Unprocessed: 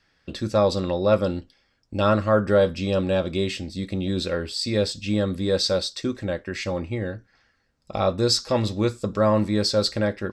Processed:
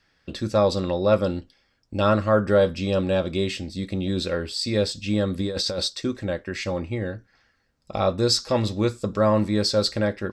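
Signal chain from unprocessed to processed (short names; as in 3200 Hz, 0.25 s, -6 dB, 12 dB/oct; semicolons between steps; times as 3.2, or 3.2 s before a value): 5.39–5.88 negative-ratio compressor -26 dBFS, ratio -1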